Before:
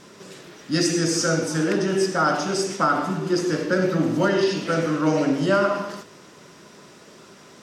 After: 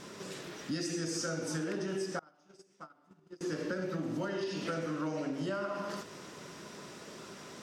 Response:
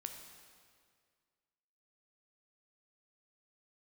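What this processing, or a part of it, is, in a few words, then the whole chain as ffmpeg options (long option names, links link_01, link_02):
serial compression, peaks first: -filter_complex "[0:a]acompressor=threshold=-27dB:ratio=8,acompressor=threshold=-39dB:ratio=1.5,asettb=1/sr,asplit=3[link_01][link_02][link_03];[link_01]atrim=end=2.194[link_04];[link_02]atrim=start=2.19:end=3.41,asetpts=PTS-STARTPTS,afade=type=in:duration=0.004:curve=qsin,afade=type=out:start_time=1.216:duration=0.004:curve=qsin,agate=range=-30dB:threshold=-30dB:ratio=16:detection=peak[link_05];[link_03]atrim=start=3.406[link_06];[link_04][link_05]acrossfade=duration=0.004:curve1=hsin:curve2=qsin[link_07];[link_07][link_06]acrossfade=duration=0.004:curve1=qsin:curve2=hsin,volume=-1dB"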